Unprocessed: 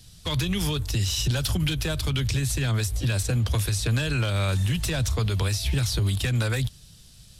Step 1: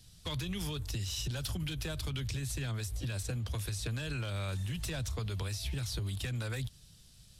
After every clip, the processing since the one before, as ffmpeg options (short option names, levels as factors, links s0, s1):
-af "acompressor=threshold=0.0562:ratio=6,volume=0.398"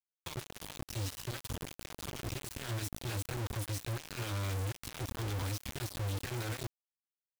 -af "equalizer=f=100:t=o:w=0.67:g=8,equalizer=f=250:t=o:w=0.67:g=-7,equalizer=f=1000:t=o:w=0.67:g=7,acrusher=bits=4:mix=0:aa=0.000001,volume=0.376"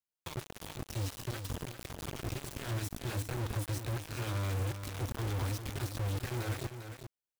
-filter_complex "[0:a]asplit=2[s0][s1];[s1]adynamicsmooth=sensitivity=6:basefreq=1500,volume=0.473[s2];[s0][s2]amix=inputs=2:normalize=0,aecho=1:1:399:0.355,volume=0.841"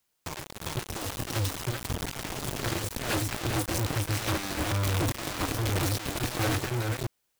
-af "aeval=exprs='0.0422*sin(PI/2*2.82*val(0)/0.0422)':c=same,volume=1.68"